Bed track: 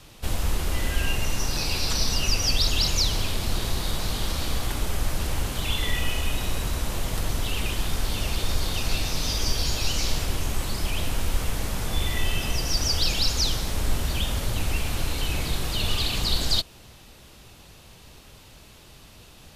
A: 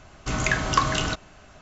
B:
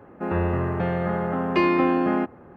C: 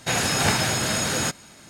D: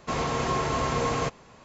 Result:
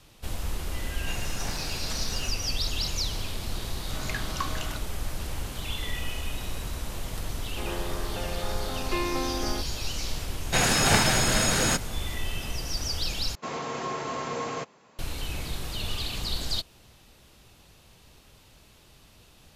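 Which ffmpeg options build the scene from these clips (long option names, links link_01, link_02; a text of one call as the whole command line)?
ffmpeg -i bed.wav -i cue0.wav -i cue1.wav -i cue2.wav -i cue3.wav -filter_complex "[3:a]asplit=2[link_01][link_02];[0:a]volume=-6.5dB[link_03];[2:a]highpass=310[link_04];[4:a]highpass=180[link_05];[link_03]asplit=2[link_06][link_07];[link_06]atrim=end=13.354[link_08];[link_05]atrim=end=1.64,asetpts=PTS-STARTPTS,volume=-5dB[link_09];[link_07]atrim=start=14.986[link_10];[link_01]atrim=end=1.69,asetpts=PTS-STARTPTS,volume=-17dB,afade=type=in:duration=0.004:curve=hsin,afade=type=out:start_time=1.686:duration=0.004:curve=hsin,adelay=1000[link_11];[1:a]atrim=end=1.61,asetpts=PTS-STARTPTS,volume=-11.5dB,afade=type=in:duration=0.004:curve=hsin,afade=type=out:start_time=1.606:duration=0.004:curve=hsin,adelay=3630[link_12];[link_04]atrim=end=2.56,asetpts=PTS-STARTPTS,volume=-8.5dB,afade=type=in:duration=0.004:curve=hsin,afade=type=out:start_time=2.556:duration=0.004:curve=hsin,adelay=7360[link_13];[link_02]atrim=end=1.69,asetpts=PTS-STARTPTS,afade=type=in:duration=0.004:curve=hsin,afade=type=out:start_time=1.686:duration=0.004:curve=hsin,adelay=10460[link_14];[link_08][link_09]acrossfade=duration=0.004:curve1=hsin:curve2=hsin[link_15];[link_15][link_10]acrossfade=duration=0.004:curve1=hsin:curve2=hsin[link_16];[link_16][link_11][link_12][link_13][link_14]amix=inputs=5:normalize=0" out.wav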